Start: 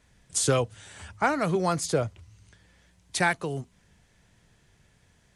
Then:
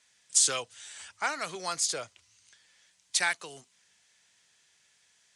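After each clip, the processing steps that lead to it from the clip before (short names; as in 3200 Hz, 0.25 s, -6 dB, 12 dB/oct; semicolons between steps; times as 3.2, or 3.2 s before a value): weighting filter ITU-R 468; gain -7 dB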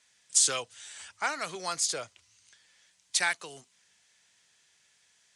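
nothing audible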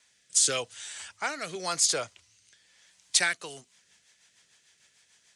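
rotary speaker horn 0.9 Hz, later 6.7 Hz, at 3.07; gain +5.5 dB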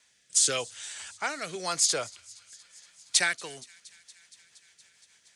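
thin delay 0.234 s, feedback 79%, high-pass 2400 Hz, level -23 dB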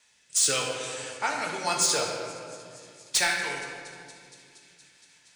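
small resonant body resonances 890/2600 Hz, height 9 dB; hard clip -18 dBFS, distortion -14 dB; reverb RT60 2.3 s, pre-delay 7 ms, DRR -1 dB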